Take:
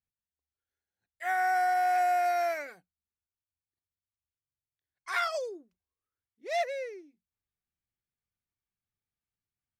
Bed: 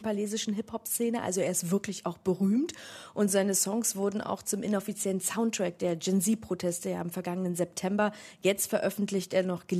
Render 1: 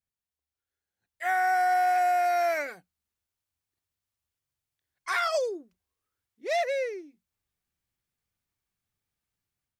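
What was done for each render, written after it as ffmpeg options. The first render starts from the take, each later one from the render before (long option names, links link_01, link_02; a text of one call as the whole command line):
ffmpeg -i in.wav -af "dynaudnorm=framelen=800:gausssize=3:maxgain=7dB,alimiter=limit=-18.5dB:level=0:latency=1:release=68" out.wav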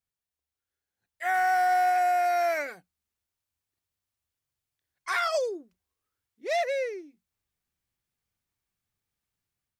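ffmpeg -i in.wav -filter_complex "[0:a]asettb=1/sr,asplit=3[link_01][link_02][link_03];[link_01]atrim=end=1.344[link_04];[link_02]atrim=start=1.34:end=1.9,asetpts=PTS-STARTPTS,afade=type=in:duration=0.004:curve=qsin,afade=type=out:start_time=0.556:duration=0.004:curve=qsin,aeval=exprs='val(0)+0.5*0.0106*sgn(val(0))':channel_layout=same[link_05];[link_03]atrim=start=1.896[link_06];[link_04][link_05]acrossfade=duration=0.004:curve1=hsin:curve2=qsin[link_07];[link_07][link_06]acrossfade=duration=0.004:curve1=qsin:curve2=hsin" out.wav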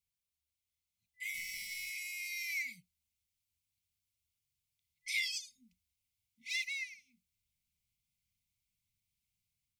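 ffmpeg -i in.wav -af "afftfilt=real='re*(1-between(b*sr/4096,260,2000))':imag='im*(1-between(b*sr/4096,260,2000))':win_size=4096:overlap=0.75,equalizer=frequency=330:width_type=o:width=0.77:gain=-12.5" out.wav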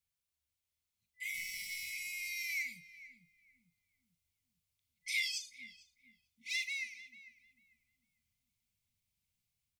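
ffmpeg -i in.wav -filter_complex "[0:a]asplit=2[link_01][link_02];[link_02]adelay=41,volume=-13dB[link_03];[link_01][link_03]amix=inputs=2:normalize=0,asplit=2[link_04][link_05];[link_05]adelay=447,lowpass=frequency=810:poles=1,volume=-7.5dB,asplit=2[link_06][link_07];[link_07]adelay=447,lowpass=frequency=810:poles=1,volume=0.5,asplit=2[link_08][link_09];[link_09]adelay=447,lowpass=frequency=810:poles=1,volume=0.5,asplit=2[link_10][link_11];[link_11]adelay=447,lowpass=frequency=810:poles=1,volume=0.5,asplit=2[link_12][link_13];[link_13]adelay=447,lowpass=frequency=810:poles=1,volume=0.5,asplit=2[link_14][link_15];[link_15]adelay=447,lowpass=frequency=810:poles=1,volume=0.5[link_16];[link_04][link_06][link_08][link_10][link_12][link_14][link_16]amix=inputs=7:normalize=0" out.wav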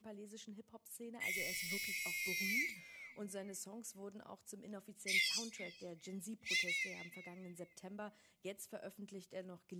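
ffmpeg -i in.wav -i bed.wav -filter_complex "[1:a]volume=-21.5dB[link_01];[0:a][link_01]amix=inputs=2:normalize=0" out.wav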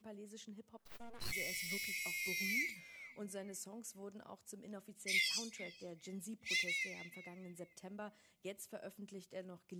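ffmpeg -i in.wav -filter_complex "[0:a]asplit=3[link_01][link_02][link_03];[link_01]afade=type=out:start_time=0.77:duration=0.02[link_04];[link_02]aeval=exprs='abs(val(0))':channel_layout=same,afade=type=in:start_time=0.77:duration=0.02,afade=type=out:start_time=1.31:duration=0.02[link_05];[link_03]afade=type=in:start_time=1.31:duration=0.02[link_06];[link_04][link_05][link_06]amix=inputs=3:normalize=0" out.wav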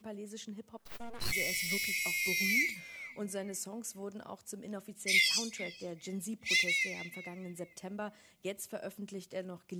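ffmpeg -i in.wav -af "volume=8dB" out.wav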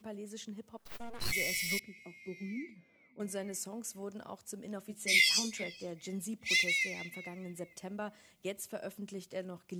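ffmpeg -i in.wav -filter_complex "[0:a]asettb=1/sr,asplit=3[link_01][link_02][link_03];[link_01]atrim=end=1.794[link_04];[link_02]atrim=start=1.79:end=3.2,asetpts=PTS-STARTPTS,afade=type=in:duration=0.004:curve=qsin,afade=type=out:start_time=1.406:duration=0.004:curve=qsin,bandpass=frequency=270:width_type=q:width=1.4[link_05];[link_03]atrim=start=3.196[link_06];[link_04][link_05]acrossfade=duration=0.004:curve1=hsin:curve2=qsin[link_07];[link_07][link_06]acrossfade=duration=0.004:curve1=qsin:curve2=hsin,asettb=1/sr,asplit=3[link_08][link_09][link_10];[link_08]atrim=end=4.884[link_11];[link_09]atrim=start=4.88:end=5.64,asetpts=PTS-STARTPTS,afade=type=in:duration=0.004:curve=qsin,afade=type=out:start_time=0.756:duration=0.004:curve=qsin,asplit=2[link_12][link_13];[link_13]adelay=14,volume=-3dB[link_14];[link_12][link_14]amix=inputs=2:normalize=0,atrim=end_sample=33516[link_15];[link_10]atrim=start=5.636[link_16];[link_11][link_15]acrossfade=duration=0.004:curve1=hsin:curve2=qsin[link_17];[link_17][link_16]acrossfade=duration=0.004:curve1=qsin:curve2=hsin" out.wav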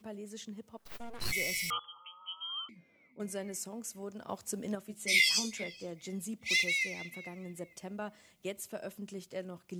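ffmpeg -i in.wav -filter_complex "[0:a]asettb=1/sr,asplit=3[link_01][link_02][link_03];[link_01]atrim=end=1.704[link_04];[link_02]atrim=start=1.7:end=2.69,asetpts=PTS-STARTPTS,afade=type=in:duration=0.004:curve=qsin,afade=type=out:start_time=0.986:duration=0.004:curve=qsin,lowpass=frequency=2900:width_type=q:width=0.5098,lowpass=frequency=2900:width_type=q:width=0.6013,lowpass=frequency=2900:width_type=q:width=0.9,lowpass=frequency=2900:width_type=q:width=2.563,afreqshift=-3400[link_05];[link_03]atrim=start=2.686[link_06];[link_04][link_05]acrossfade=duration=0.004:curve1=hsin:curve2=qsin[link_07];[link_07][link_06]acrossfade=duration=0.004:curve1=qsin:curve2=hsin,asplit=3[link_08][link_09][link_10];[link_08]atrim=end=4.292[link_11];[link_09]atrim=start=4.288:end=4.752,asetpts=PTS-STARTPTS,volume=6.5dB[link_12];[link_10]atrim=start=4.748[link_13];[link_11][link_12]acrossfade=duration=0.004:curve1=hsin:curve2=hsin[link_14];[link_14][link_13]acrossfade=duration=0.004:curve1=hsin:curve2=hsin" out.wav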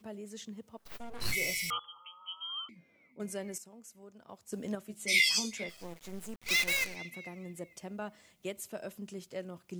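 ffmpeg -i in.wav -filter_complex "[0:a]asettb=1/sr,asplit=3[link_01][link_02][link_03];[link_01]atrim=end=1.094[link_04];[link_02]atrim=start=1.09:end=1.54,asetpts=PTS-STARTPTS,afade=type=in:duration=0.004:curve=qsin,afade=type=out:start_time=0.446:duration=0.004:curve=qsin,asplit=2[link_05][link_06];[link_06]adelay=29,volume=-6dB[link_07];[link_05][link_07]amix=inputs=2:normalize=0,atrim=end_sample=19845[link_08];[link_03]atrim=start=1.536[link_09];[link_04][link_08]acrossfade=duration=0.004:curve1=hsin:curve2=qsin[link_10];[link_10][link_09]acrossfade=duration=0.004:curve1=qsin:curve2=hsin,asplit=3[link_11][link_12][link_13];[link_11]afade=type=out:start_time=5.68:duration=0.02[link_14];[link_12]acrusher=bits=6:dc=4:mix=0:aa=0.000001,afade=type=in:start_time=5.68:duration=0.02,afade=type=out:start_time=6.95:duration=0.02[link_15];[link_13]afade=type=in:start_time=6.95:duration=0.02[link_16];[link_14][link_15][link_16]amix=inputs=3:normalize=0,asplit=3[link_17][link_18][link_19];[link_17]atrim=end=3.582[link_20];[link_18]atrim=start=3.578:end=4.522,asetpts=PTS-STARTPTS,volume=-10.5dB[link_21];[link_19]atrim=start=4.518[link_22];[link_20][link_21]acrossfade=duration=0.004:curve1=hsin:curve2=hsin[link_23];[link_23][link_22]acrossfade=duration=0.004:curve1=hsin:curve2=hsin" out.wav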